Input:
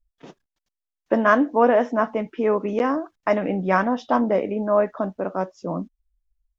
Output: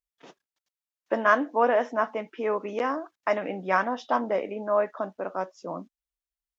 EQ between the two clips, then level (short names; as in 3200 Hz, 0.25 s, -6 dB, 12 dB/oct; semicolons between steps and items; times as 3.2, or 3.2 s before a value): HPF 660 Hz 6 dB/oct; -1.5 dB